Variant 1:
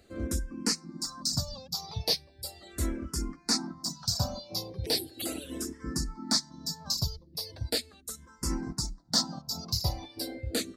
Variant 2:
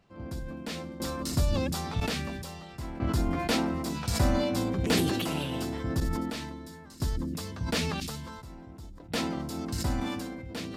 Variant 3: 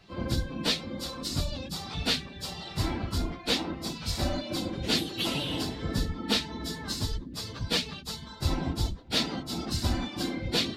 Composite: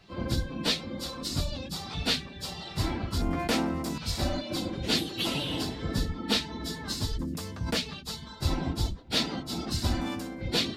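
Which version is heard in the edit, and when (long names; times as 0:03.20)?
3
0:03.22–0:03.98: punch in from 2
0:07.19–0:07.77: punch in from 2
0:10.01–0:10.41: punch in from 2
not used: 1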